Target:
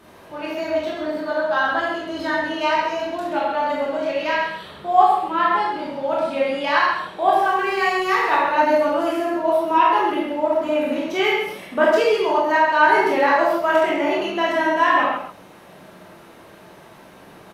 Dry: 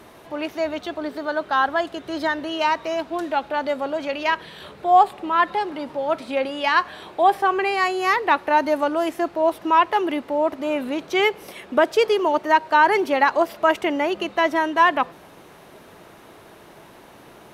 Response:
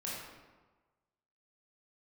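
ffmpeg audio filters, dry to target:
-filter_complex "[0:a]aecho=1:1:132:0.355,asettb=1/sr,asplit=3[a][b][c];[a]atrim=end=7.354[d];[b]atrim=start=7.35:end=8.42,asetpts=PTS-STARTPTS,afade=t=in:d=0.004:c=qsin,afade=t=out:st=1.066:d=0.004:c=qsin,aeval=exprs='sgn(val(0))*max(abs(val(0))-0.00891,0)':c=same[e];[c]atrim=start=8.416[f];[d][e]acrossfade=d=0.004:c1=hsin:c2=qsin[g];[g][f]acrossfade=d=0.004:c1=qsin:c2=hsin[h];[1:a]atrim=start_sample=2205,afade=t=out:st=0.21:d=0.01,atrim=end_sample=9702[i];[h][i]afir=irnorm=-1:irlink=0"

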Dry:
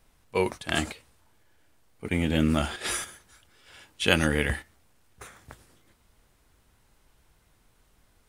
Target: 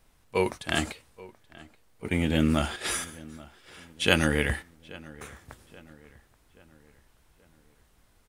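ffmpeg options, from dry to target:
-filter_complex "[0:a]asplit=2[a][b];[b]adelay=829,lowpass=f=2.7k:p=1,volume=-20.5dB,asplit=2[c][d];[d]adelay=829,lowpass=f=2.7k:p=1,volume=0.5,asplit=2[e][f];[f]adelay=829,lowpass=f=2.7k:p=1,volume=0.5,asplit=2[g][h];[h]adelay=829,lowpass=f=2.7k:p=1,volume=0.5[i];[a][c][e][g][i]amix=inputs=5:normalize=0"

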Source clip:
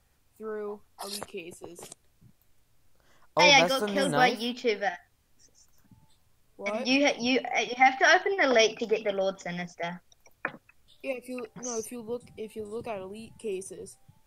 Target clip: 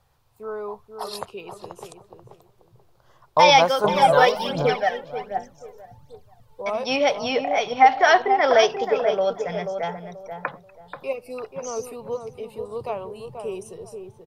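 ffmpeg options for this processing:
-filter_complex "[0:a]equalizer=f=125:t=o:w=1:g=9,equalizer=f=250:t=o:w=1:g=-7,equalizer=f=500:t=o:w=1:g=5,equalizer=f=1k:t=o:w=1:g=10,equalizer=f=2k:t=o:w=1:g=-3,equalizer=f=4k:t=o:w=1:g=4,equalizer=f=8k:t=o:w=1:g=-4,asplit=2[a][b];[b]adelay=484,lowpass=f=1.1k:p=1,volume=-6dB,asplit=2[c][d];[d]adelay=484,lowpass=f=1.1k:p=1,volume=0.28,asplit=2[e][f];[f]adelay=484,lowpass=f=1.1k:p=1,volume=0.28,asplit=2[g][h];[h]adelay=484,lowpass=f=1.1k:p=1,volume=0.28[i];[a][c][e][g][i]amix=inputs=5:normalize=0,asettb=1/sr,asplit=3[j][k][l];[j]atrim=end=3.844[m];[k]atrim=start=3.84:end=6.62,asetpts=PTS-STARTPTS,afade=t=in:d=0.004:c=qsin,afade=t=out:st=2.776:d=0.004:c=qsin,aphaser=in_gain=1:out_gain=1:delay=2.3:decay=0.65:speed=1.3:type=triangular[n];[l]atrim=start=6.616[o];[m][n]acrossfade=d=0.004:c1=hsin:c2=qsin[p];[p][o]acrossfade=d=0.004:c1=qsin:c2=hsin"

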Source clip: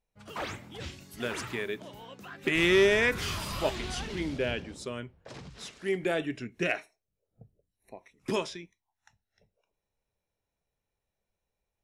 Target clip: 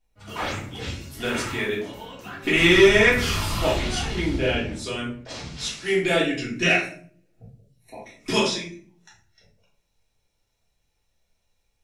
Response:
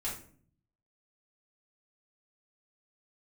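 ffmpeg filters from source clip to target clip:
-filter_complex "[0:a]asetnsamples=n=441:p=0,asendcmd='4.84 equalizer g 10',equalizer=f=4.9k:w=0.58:g=2.5[a];[1:a]atrim=start_sample=2205[b];[a][b]afir=irnorm=-1:irlink=0,volume=5dB"

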